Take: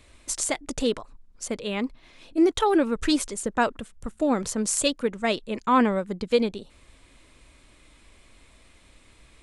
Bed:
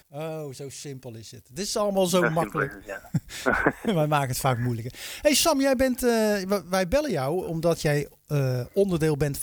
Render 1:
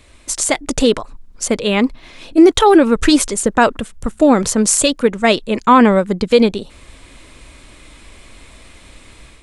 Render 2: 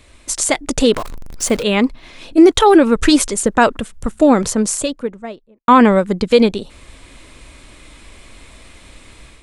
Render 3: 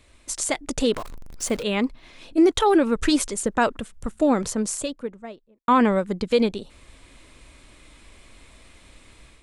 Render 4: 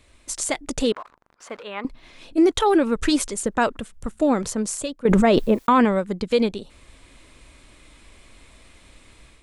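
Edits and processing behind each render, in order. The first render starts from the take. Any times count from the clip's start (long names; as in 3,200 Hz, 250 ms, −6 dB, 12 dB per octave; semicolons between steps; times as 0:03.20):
automatic gain control gain up to 6.5 dB; boost into a limiter +7 dB
0:00.94–0:01.63: converter with a step at zero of −25.5 dBFS; 0:04.21–0:05.68: fade out and dull
level −8.5 dB
0:00.92–0:01.85: resonant band-pass 1,200 Hz, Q 1.3; 0:05.05–0:05.85: envelope flattener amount 100%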